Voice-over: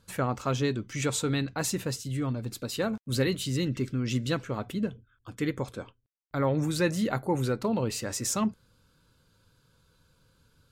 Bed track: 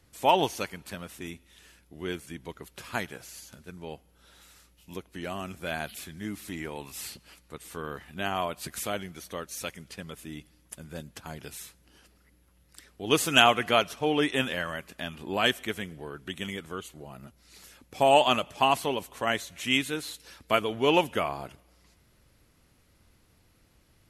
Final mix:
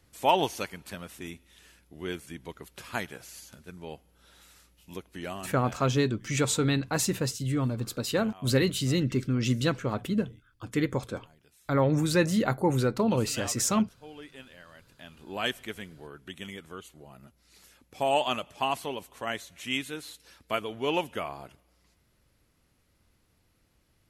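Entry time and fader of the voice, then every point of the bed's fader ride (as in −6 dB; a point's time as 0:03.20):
5.35 s, +2.5 dB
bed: 0:05.30 −1 dB
0:05.94 −20.5 dB
0:14.57 −20.5 dB
0:15.42 −5.5 dB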